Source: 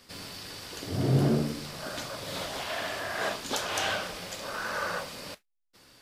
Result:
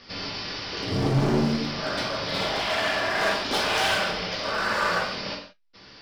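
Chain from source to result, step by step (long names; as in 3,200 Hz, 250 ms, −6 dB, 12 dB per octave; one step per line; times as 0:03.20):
elliptic low-pass filter 5,400 Hz, stop band 40 dB
hard clipping −30.5 dBFS, distortion −6 dB
reverb whose tail is shaped and stops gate 200 ms falling, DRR −1 dB
level +7 dB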